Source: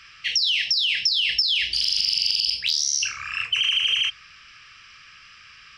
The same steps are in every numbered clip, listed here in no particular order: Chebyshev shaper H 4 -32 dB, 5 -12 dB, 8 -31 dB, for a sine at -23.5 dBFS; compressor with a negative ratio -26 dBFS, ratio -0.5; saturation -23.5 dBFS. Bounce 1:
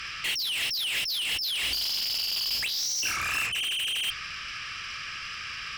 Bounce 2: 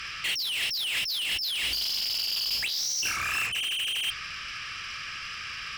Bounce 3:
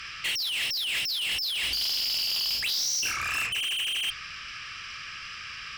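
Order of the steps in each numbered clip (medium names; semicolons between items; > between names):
compressor with a negative ratio > saturation > Chebyshev shaper; compressor with a negative ratio > Chebyshev shaper > saturation; Chebyshev shaper > compressor with a negative ratio > saturation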